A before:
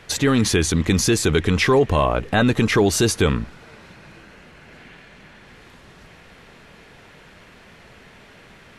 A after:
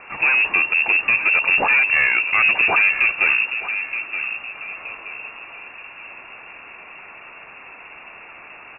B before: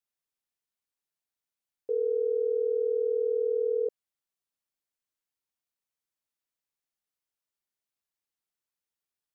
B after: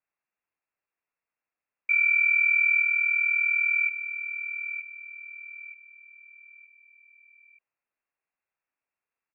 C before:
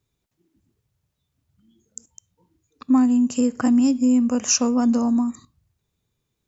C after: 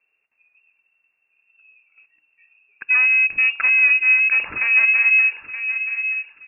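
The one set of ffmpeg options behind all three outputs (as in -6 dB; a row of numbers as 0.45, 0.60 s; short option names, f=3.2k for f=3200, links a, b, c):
-filter_complex "[0:a]asoftclip=type=tanh:threshold=-20dB,asplit=2[a][b];[b]adelay=924,lowpass=f=1.1k:p=1,volume=-8.5dB,asplit=2[c][d];[d]adelay=924,lowpass=f=1.1k:p=1,volume=0.4,asplit=2[e][f];[f]adelay=924,lowpass=f=1.1k:p=1,volume=0.4,asplit=2[g][h];[h]adelay=924,lowpass=f=1.1k:p=1,volume=0.4[i];[a][c][e][g][i]amix=inputs=5:normalize=0,lowpass=f=2.4k:t=q:w=0.5098,lowpass=f=2.4k:t=q:w=0.6013,lowpass=f=2.4k:t=q:w=0.9,lowpass=f=2.4k:t=q:w=2.563,afreqshift=-2800,volume=6.5dB"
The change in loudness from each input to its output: +2.5, +6.5, +4.5 LU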